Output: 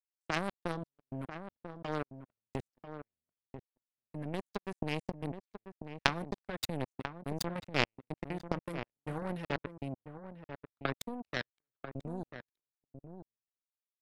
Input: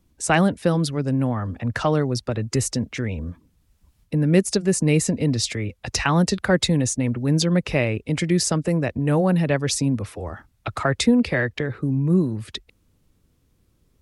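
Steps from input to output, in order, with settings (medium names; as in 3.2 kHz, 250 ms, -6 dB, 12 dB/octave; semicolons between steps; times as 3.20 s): level held to a coarse grid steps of 21 dB; power-law waveshaper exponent 3; echo from a far wall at 170 m, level -9 dB; trim +4.5 dB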